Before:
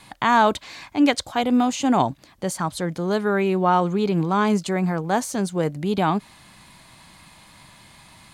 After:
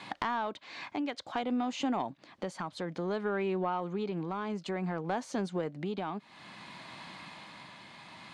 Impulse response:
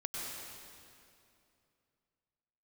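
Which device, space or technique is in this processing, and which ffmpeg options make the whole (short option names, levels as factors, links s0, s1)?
AM radio: -af "highpass=190,lowpass=4000,acompressor=threshold=0.02:ratio=5,asoftclip=type=tanh:threshold=0.0708,tremolo=f=0.57:d=0.38,volume=1.58"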